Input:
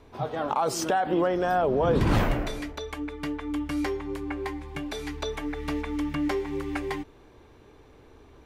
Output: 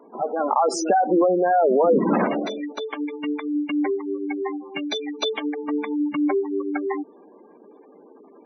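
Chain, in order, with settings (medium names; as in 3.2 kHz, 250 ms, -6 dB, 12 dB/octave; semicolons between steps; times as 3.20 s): elliptic high-pass 190 Hz, stop band 60 dB; spectral gate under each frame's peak -15 dB strong; 3.01–5.40 s: resonant high shelf 2.2 kHz +6.5 dB, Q 1.5; trim +7 dB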